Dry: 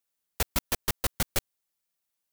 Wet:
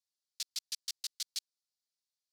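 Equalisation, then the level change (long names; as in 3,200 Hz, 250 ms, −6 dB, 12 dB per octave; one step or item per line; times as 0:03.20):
four-pole ladder band-pass 5,200 Hz, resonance 50%
+5.0 dB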